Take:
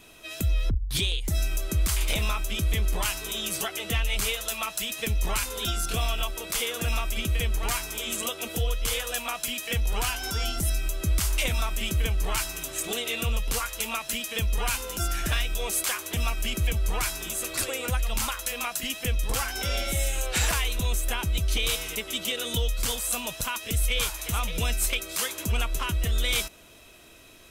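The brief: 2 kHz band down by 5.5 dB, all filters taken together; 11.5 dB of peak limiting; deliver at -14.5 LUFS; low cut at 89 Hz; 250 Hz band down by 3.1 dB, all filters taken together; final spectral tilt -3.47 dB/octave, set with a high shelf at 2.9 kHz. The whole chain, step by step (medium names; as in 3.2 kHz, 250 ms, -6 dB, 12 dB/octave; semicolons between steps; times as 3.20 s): high-pass 89 Hz; peaking EQ 250 Hz -4 dB; peaking EQ 2 kHz -3.5 dB; treble shelf 2.9 kHz -8 dB; trim +23.5 dB; peak limiter -5.5 dBFS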